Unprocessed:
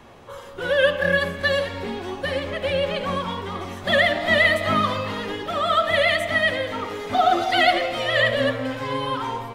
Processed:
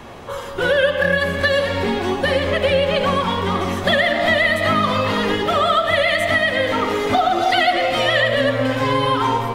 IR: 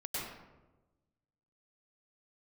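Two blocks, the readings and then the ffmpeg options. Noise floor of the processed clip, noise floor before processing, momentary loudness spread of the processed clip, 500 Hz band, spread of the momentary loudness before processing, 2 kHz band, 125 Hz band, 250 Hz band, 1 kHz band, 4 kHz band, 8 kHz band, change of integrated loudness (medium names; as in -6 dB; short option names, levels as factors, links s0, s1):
-29 dBFS, -38 dBFS, 4 LU, +4.5 dB, 11 LU, +3.0 dB, +6.5 dB, +6.5 dB, +4.5 dB, +4.0 dB, +5.5 dB, +4.0 dB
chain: -filter_complex "[0:a]acompressor=threshold=0.0631:ratio=6,asplit=2[s0][s1];[1:a]atrim=start_sample=2205[s2];[s1][s2]afir=irnorm=-1:irlink=0,volume=0.282[s3];[s0][s3]amix=inputs=2:normalize=0,volume=2.66"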